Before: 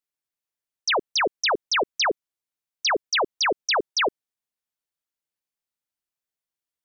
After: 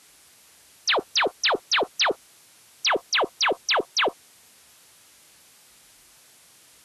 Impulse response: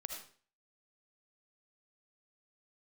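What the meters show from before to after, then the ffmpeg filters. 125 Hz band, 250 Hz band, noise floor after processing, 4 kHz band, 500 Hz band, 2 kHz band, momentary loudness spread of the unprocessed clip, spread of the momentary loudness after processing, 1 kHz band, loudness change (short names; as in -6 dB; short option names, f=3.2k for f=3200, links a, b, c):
n/a, 0.0 dB, -55 dBFS, +1.5 dB, 0.0 dB, 0.0 dB, 4 LU, 5 LU, -0.5 dB, +0.5 dB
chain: -af "aeval=exprs='val(0)+0.5*0.00562*sgn(val(0))':c=same" -ar 32000 -c:a libvorbis -b:a 32k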